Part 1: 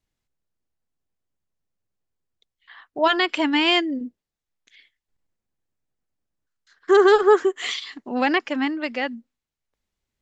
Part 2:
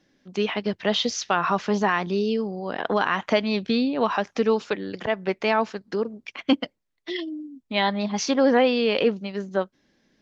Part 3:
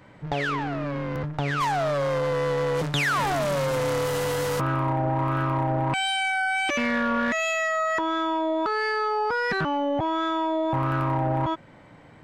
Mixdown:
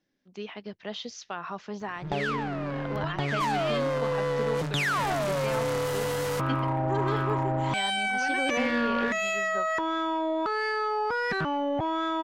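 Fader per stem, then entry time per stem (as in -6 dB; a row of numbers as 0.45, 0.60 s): -18.0, -13.5, -3.0 dB; 0.00, 0.00, 1.80 s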